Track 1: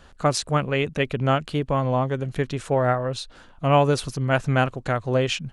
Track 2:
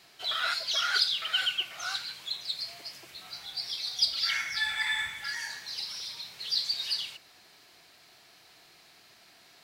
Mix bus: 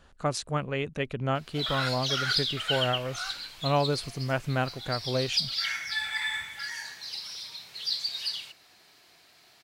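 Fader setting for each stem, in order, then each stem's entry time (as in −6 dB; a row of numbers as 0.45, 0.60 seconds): −7.5, −1.0 decibels; 0.00, 1.35 seconds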